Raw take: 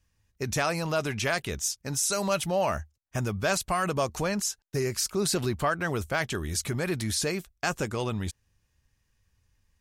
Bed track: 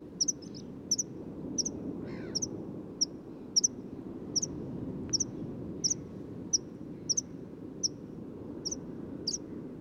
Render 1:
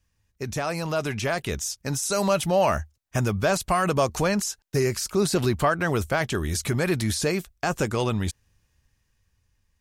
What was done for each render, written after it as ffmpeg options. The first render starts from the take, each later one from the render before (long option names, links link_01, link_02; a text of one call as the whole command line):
ffmpeg -i in.wav -filter_complex "[0:a]acrossover=split=1100[link_01][link_02];[link_02]alimiter=level_in=0.5dB:limit=-24dB:level=0:latency=1:release=72,volume=-0.5dB[link_03];[link_01][link_03]amix=inputs=2:normalize=0,dynaudnorm=framelen=220:gausssize=11:maxgain=5.5dB" out.wav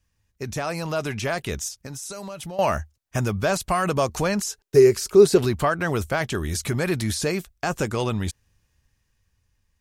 ffmpeg -i in.wav -filter_complex "[0:a]asettb=1/sr,asplit=3[link_01][link_02][link_03];[link_01]atrim=end=1.684[link_04];[link_02]atrim=start=1.68:end=2.59,asetpts=PTS-STARTPTS,afade=type=in:duration=0.004:curve=qsin,afade=type=out:start_time=0.906:duration=0.004:curve=qsin,acompressor=threshold=-31dB:ratio=12:attack=3.2:release=140:knee=1:detection=peak[link_05];[link_03]atrim=start=2.586[link_06];[link_04][link_05]acrossfade=duration=0.004:curve1=hsin:curve2=qsin[link_07];[link_07][link_06]acrossfade=duration=0.004:curve1=qsin:curve2=hsin,asettb=1/sr,asplit=3[link_08][link_09][link_10];[link_08]atrim=end=4.484[link_11];[link_09]atrim=start=4.48:end=5.43,asetpts=PTS-STARTPTS,afade=type=in:duration=0.004:curve=qsin,afade=type=out:start_time=0.946:duration=0.004:curve=qsin,equalizer=frequency=410:width=3.5:gain=13[link_12];[link_10]atrim=start=5.426[link_13];[link_11][link_12]acrossfade=duration=0.004:curve1=hsin:curve2=qsin[link_14];[link_14][link_13]acrossfade=duration=0.004:curve1=qsin:curve2=hsin" out.wav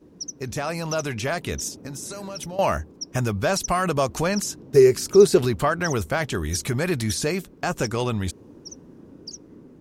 ffmpeg -i in.wav -i bed.wav -filter_complex "[1:a]volume=-4.5dB[link_01];[0:a][link_01]amix=inputs=2:normalize=0" out.wav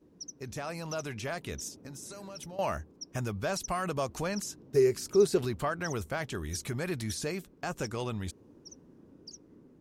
ffmpeg -i in.wav -af "volume=-10dB" out.wav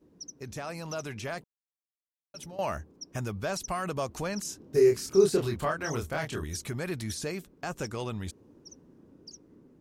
ffmpeg -i in.wav -filter_complex "[0:a]asettb=1/sr,asplit=3[link_01][link_02][link_03];[link_01]atrim=end=4.424[link_04];[link_02]atrim=start=4.42:end=6.44,asetpts=PTS-STARTPTS,afade=type=in:duration=0.004:curve=qsin,afade=type=out:start_time=2.016:duration=0.004:curve=qsin,asplit=2[link_05][link_06];[link_06]adelay=26,volume=-2.5dB[link_07];[link_05][link_07]amix=inputs=2:normalize=0,atrim=end_sample=89082[link_08];[link_03]atrim=start=6.436[link_09];[link_04][link_08]acrossfade=duration=0.004:curve1=hsin:curve2=qsin[link_10];[link_10][link_09]acrossfade=duration=0.004:curve1=qsin:curve2=hsin,asplit=3[link_11][link_12][link_13];[link_11]atrim=end=1.44,asetpts=PTS-STARTPTS,afade=type=out:start_time=1.436:duration=0.004:curve=hsin[link_14];[link_12]atrim=start=1.44:end=2.34,asetpts=PTS-STARTPTS,volume=0[link_15];[link_13]atrim=start=2.34,asetpts=PTS-STARTPTS,afade=type=in:duration=0.004:curve=hsin[link_16];[link_14][link_15][link_16]concat=n=3:v=0:a=1" out.wav